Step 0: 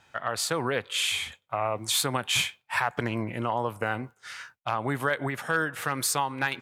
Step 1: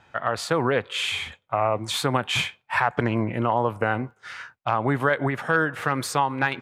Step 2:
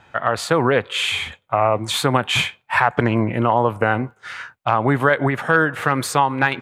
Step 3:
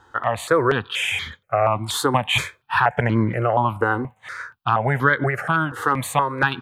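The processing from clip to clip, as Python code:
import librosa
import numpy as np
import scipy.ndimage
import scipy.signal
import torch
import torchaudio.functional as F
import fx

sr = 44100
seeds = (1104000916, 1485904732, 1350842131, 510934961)

y1 = fx.lowpass(x, sr, hz=1800.0, slope=6)
y1 = y1 * librosa.db_to_amplitude(6.5)
y2 = fx.peak_eq(y1, sr, hz=5300.0, db=-3.5, octaves=0.44)
y2 = y2 * librosa.db_to_amplitude(5.5)
y3 = fx.phaser_held(y2, sr, hz=4.2, low_hz=640.0, high_hz=2600.0)
y3 = y3 * librosa.db_to_amplitude(1.5)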